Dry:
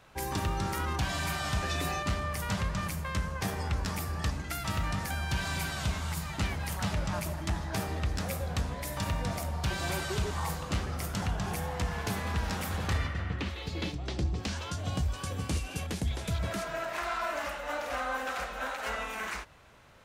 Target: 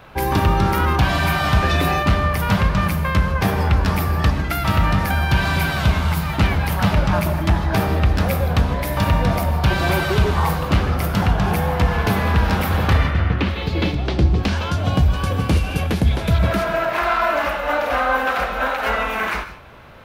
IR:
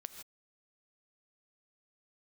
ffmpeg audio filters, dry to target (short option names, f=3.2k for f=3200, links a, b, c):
-filter_complex "[0:a]equalizer=f=7.5k:w=0.91:g=-14.5,bandreject=f=1.9k:w=25,asplit=2[a][b];[1:a]atrim=start_sample=2205[c];[b][c]afir=irnorm=-1:irlink=0,volume=5.5dB[d];[a][d]amix=inputs=2:normalize=0,volume=8.5dB"